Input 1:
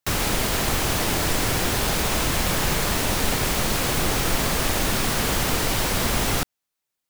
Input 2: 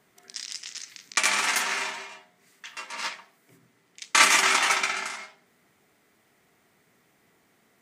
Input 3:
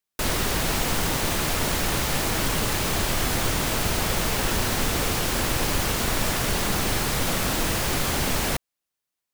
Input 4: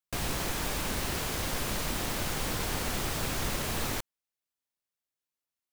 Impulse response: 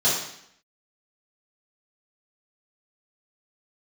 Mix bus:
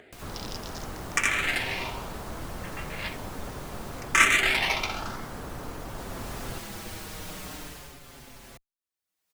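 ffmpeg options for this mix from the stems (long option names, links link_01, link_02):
-filter_complex "[0:a]lowpass=frequency=1500:width=0.5412,lowpass=frequency=1500:width=1.3066,adelay=150,volume=-13.5dB[link_01];[1:a]adynamicsmooth=sensitivity=2:basefreq=3400,asplit=2[link_02][link_03];[link_03]afreqshift=0.68[link_04];[link_02][link_04]amix=inputs=2:normalize=1,volume=1dB[link_05];[2:a]asplit=2[link_06][link_07];[link_07]adelay=5.5,afreqshift=-0.47[link_08];[link_06][link_08]amix=inputs=2:normalize=1,volume=-11.5dB,afade=type=in:start_time=5.87:duration=0.6:silence=0.446684,afade=type=out:start_time=7.54:duration=0.46:silence=0.251189[link_09];[3:a]volume=-17dB[link_10];[link_01][link_05][link_09][link_10]amix=inputs=4:normalize=0,acompressor=mode=upward:threshold=-41dB:ratio=2.5"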